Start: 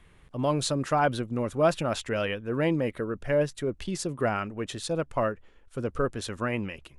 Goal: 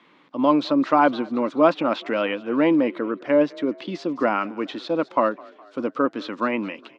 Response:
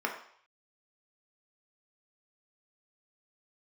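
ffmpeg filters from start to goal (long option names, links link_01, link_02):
-filter_complex "[0:a]highpass=frequency=240:width=0.5412,highpass=frequency=240:width=1.3066,equalizer=frequency=290:width_type=q:width=4:gain=7,equalizer=frequency=410:width_type=q:width=4:gain=-8,equalizer=frequency=700:width_type=q:width=4:gain=-4,equalizer=frequency=1000:width_type=q:width=4:gain=4,equalizer=frequency=1700:width_type=q:width=4:gain=-6,equalizer=frequency=2800:width_type=q:width=4:gain=-3,lowpass=frequency=4700:width=0.5412,lowpass=frequency=4700:width=1.3066,asplit=5[link_01][link_02][link_03][link_04][link_05];[link_02]adelay=207,afreqshift=35,volume=-24dB[link_06];[link_03]adelay=414,afreqshift=70,volume=-28.9dB[link_07];[link_04]adelay=621,afreqshift=105,volume=-33.8dB[link_08];[link_05]adelay=828,afreqshift=140,volume=-38.6dB[link_09];[link_01][link_06][link_07][link_08][link_09]amix=inputs=5:normalize=0,acrossover=split=3600[link_10][link_11];[link_11]acompressor=threshold=-56dB:ratio=4:attack=1:release=60[link_12];[link_10][link_12]amix=inputs=2:normalize=0,volume=8dB"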